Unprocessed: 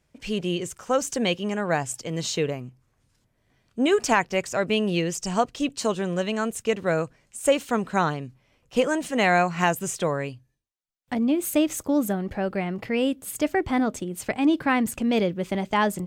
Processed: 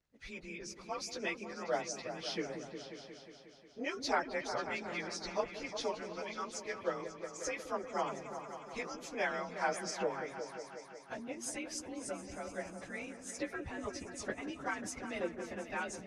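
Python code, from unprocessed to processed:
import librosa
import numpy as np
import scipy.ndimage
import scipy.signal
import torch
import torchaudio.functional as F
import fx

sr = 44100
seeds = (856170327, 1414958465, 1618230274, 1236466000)

y = fx.partial_stretch(x, sr, pct=92)
y = fx.hpss(y, sr, part='harmonic', gain_db=-17)
y = fx.echo_opening(y, sr, ms=180, hz=400, octaves=2, feedback_pct=70, wet_db=-6)
y = F.gain(torch.from_numpy(y), -6.5).numpy()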